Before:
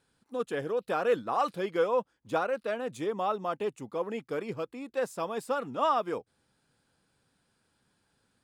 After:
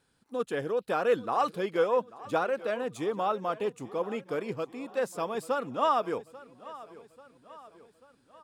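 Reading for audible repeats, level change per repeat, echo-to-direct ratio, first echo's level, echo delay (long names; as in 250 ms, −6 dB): 3, −5.5 dB, −17.0 dB, −18.5 dB, 839 ms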